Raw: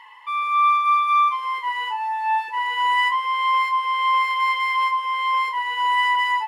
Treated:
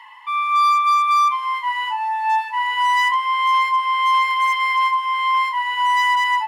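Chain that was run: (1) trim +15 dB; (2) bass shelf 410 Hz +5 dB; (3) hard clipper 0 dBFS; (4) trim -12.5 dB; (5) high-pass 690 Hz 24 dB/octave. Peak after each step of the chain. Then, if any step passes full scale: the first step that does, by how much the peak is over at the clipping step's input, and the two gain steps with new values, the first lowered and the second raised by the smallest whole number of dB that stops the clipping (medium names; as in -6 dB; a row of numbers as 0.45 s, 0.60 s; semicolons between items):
+4.5 dBFS, +5.0 dBFS, 0.0 dBFS, -12.5 dBFS, -9.5 dBFS; step 1, 5.0 dB; step 1 +10 dB, step 4 -7.5 dB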